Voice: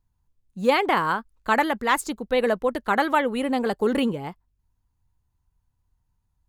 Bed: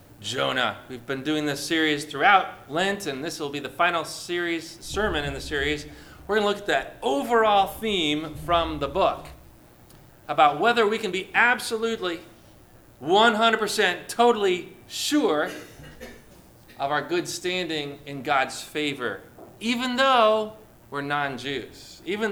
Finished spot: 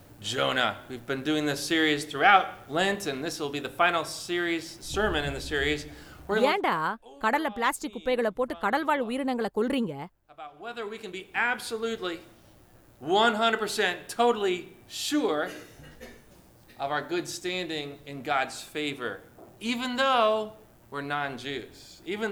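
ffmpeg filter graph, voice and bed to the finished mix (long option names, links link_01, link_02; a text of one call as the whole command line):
ffmpeg -i stem1.wav -i stem2.wav -filter_complex "[0:a]adelay=5750,volume=-4.5dB[link_01];[1:a]volume=19.5dB,afade=type=out:start_time=6.26:duration=0.36:silence=0.0630957,afade=type=in:start_time=10.51:duration=1.38:silence=0.0891251[link_02];[link_01][link_02]amix=inputs=2:normalize=0" out.wav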